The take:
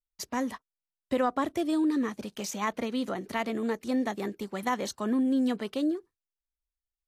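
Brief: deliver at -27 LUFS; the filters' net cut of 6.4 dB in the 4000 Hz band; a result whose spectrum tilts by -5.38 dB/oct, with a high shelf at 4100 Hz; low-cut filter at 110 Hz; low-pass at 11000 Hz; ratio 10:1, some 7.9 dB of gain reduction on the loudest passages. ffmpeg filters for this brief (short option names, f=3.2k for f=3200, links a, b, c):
-af "highpass=110,lowpass=11k,equalizer=f=4k:t=o:g=-3.5,highshelf=f=4.1k:g=-8.5,acompressor=threshold=-31dB:ratio=10,volume=9.5dB"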